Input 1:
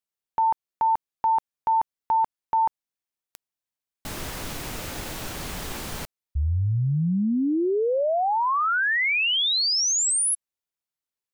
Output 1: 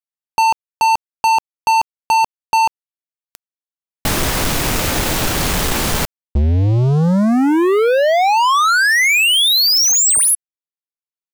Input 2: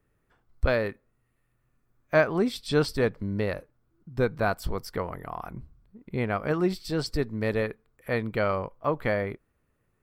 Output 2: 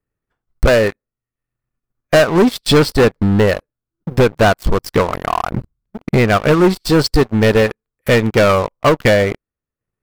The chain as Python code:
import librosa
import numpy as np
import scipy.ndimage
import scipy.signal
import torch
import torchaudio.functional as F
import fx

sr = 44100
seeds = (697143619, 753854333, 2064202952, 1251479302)

y = fx.transient(x, sr, attack_db=5, sustain_db=-6)
y = fx.leveller(y, sr, passes=5)